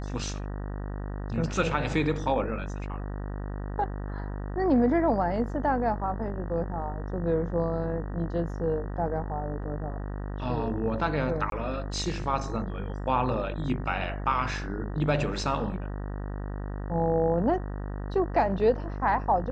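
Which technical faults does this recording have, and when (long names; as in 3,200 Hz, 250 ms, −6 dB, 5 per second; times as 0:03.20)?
mains buzz 50 Hz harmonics 38 −34 dBFS
0:11.50–0:11.52: drop-out 22 ms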